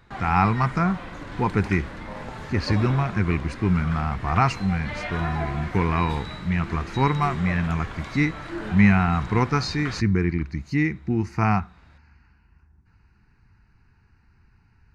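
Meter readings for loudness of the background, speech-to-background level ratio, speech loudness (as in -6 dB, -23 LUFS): -35.0 LUFS, 11.0 dB, -24.0 LUFS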